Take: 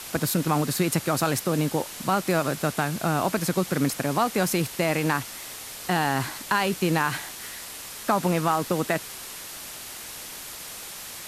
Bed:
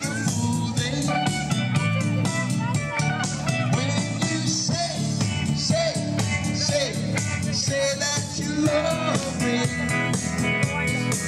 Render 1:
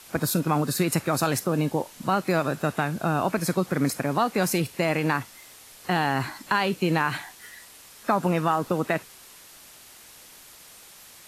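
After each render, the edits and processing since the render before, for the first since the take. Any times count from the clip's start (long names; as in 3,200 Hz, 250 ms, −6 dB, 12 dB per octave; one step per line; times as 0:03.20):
noise reduction from a noise print 10 dB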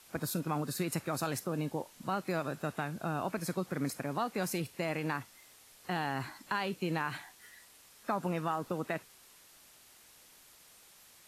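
level −10.5 dB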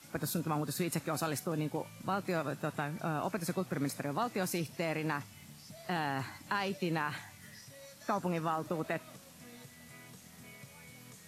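mix in bed −30.5 dB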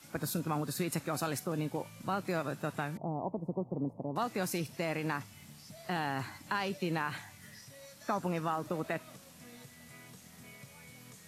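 0:02.97–0:04.16: elliptic low-pass filter 950 Hz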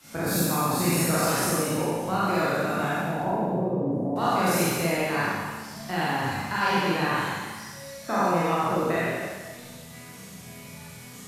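peak hold with a decay on every bin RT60 1.48 s
four-comb reverb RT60 0.88 s, combs from 32 ms, DRR −6 dB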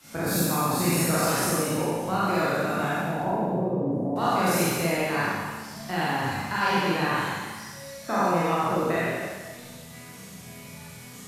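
no processing that can be heard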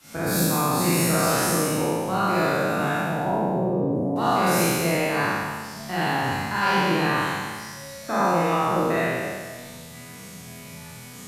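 peak hold with a decay on every bin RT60 1.18 s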